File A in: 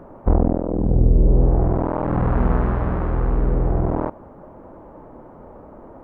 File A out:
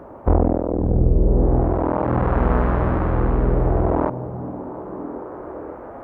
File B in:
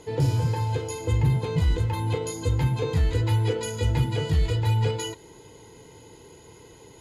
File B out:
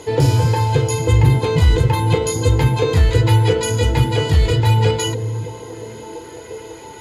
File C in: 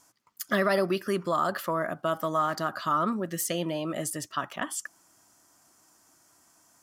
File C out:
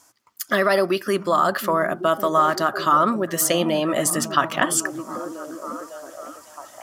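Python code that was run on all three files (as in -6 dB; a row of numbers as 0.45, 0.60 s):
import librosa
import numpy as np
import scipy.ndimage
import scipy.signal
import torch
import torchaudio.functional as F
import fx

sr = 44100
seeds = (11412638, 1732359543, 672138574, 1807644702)

p1 = scipy.signal.sosfilt(scipy.signal.butter(2, 52.0, 'highpass', fs=sr, output='sos'), x)
p2 = fx.peak_eq(p1, sr, hz=170.0, db=-6.5, octaves=1.0)
p3 = fx.rider(p2, sr, range_db=10, speed_s=2.0)
p4 = p3 + fx.echo_stepped(p3, sr, ms=551, hz=160.0, octaves=0.7, feedback_pct=70, wet_db=-5.0, dry=0)
y = librosa.util.normalize(p4) * 10.0 ** (-2 / 20.0)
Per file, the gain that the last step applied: +3.0, +11.5, +9.0 dB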